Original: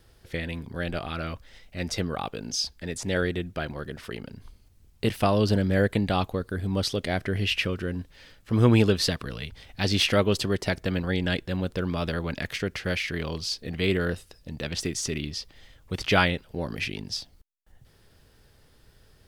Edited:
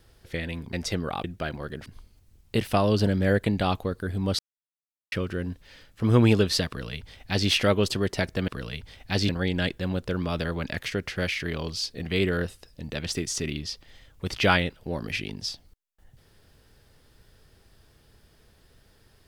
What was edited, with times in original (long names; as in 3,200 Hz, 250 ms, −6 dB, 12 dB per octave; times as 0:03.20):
0:00.73–0:01.79: remove
0:02.30–0:03.40: remove
0:04.02–0:04.35: remove
0:06.88–0:07.61: silence
0:09.17–0:09.98: duplicate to 0:10.97